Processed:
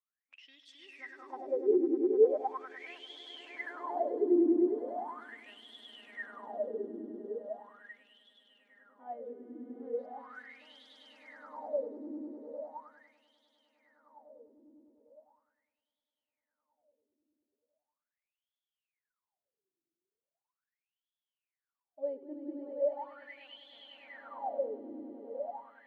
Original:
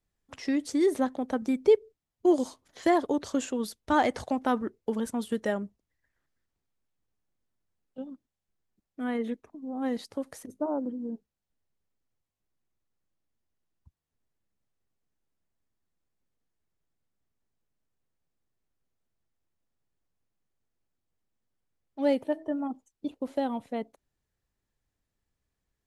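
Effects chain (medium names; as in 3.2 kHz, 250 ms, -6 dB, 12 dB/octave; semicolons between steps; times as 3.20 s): time-frequency box 3.17–5.18 s, 440–7400 Hz -15 dB; echo with a slow build-up 101 ms, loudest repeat 8, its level -3.5 dB; wah-wah 0.39 Hz 330–3400 Hz, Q 20; trim +3.5 dB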